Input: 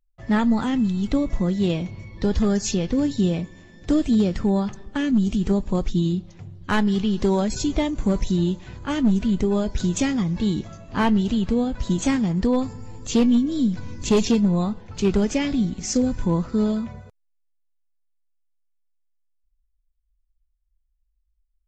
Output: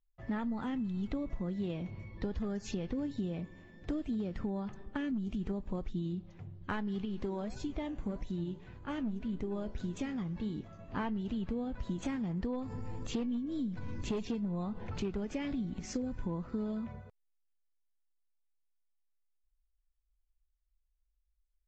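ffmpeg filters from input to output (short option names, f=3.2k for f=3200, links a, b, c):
-filter_complex "[0:a]asettb=1/sr,asplit=3[a][b][c];[a]atrim=end=7.054[d];[b]atrim=start=7.05:end=10.79,asetpts=PTS-STARTPTS,afade=t=in:d=0.004:c=qsin,afade=t=out:st=3.736:d=0.004:c=qsin,flanger=delay=6.3:depth=8.3:regen=85:speed=1.7:shape=triangular[e];[c]atrim=start=10.786[f];[d][e]acrossfade=d=0.004:c1=hsin:c2=qsin[g];[g][f]acrossfade=d=0.004:c1=qsin:c2=hsin,asettb=1/sr,asplit=3[h][i][j];[h]atrim=end=12.034[k];[i]atrim=start=12.03:end=15.81,asetpts=PTS-STARTPTS,afade=t=in:d=0.004:c=qsin,afade=t=out:st=3.776:d=0.004:c=qsin,acompressor=mode=upward:threshold=-21dB:ratio=2.5:attack=3.2:release=140:knee=2.83:detection=peak[l];[j]atrim=start=15.806[m];[k][l]acrossfade=d=0.004:c1=hsin:c2=qsin[n];[n][m]acrossfade=d=0.004:c1=qsin:c2=hsin,bass=f=250:g=-1,treble=f=4k:g=-14,acompressor=threshold=-26dB:ratio=6,volume=-7dB"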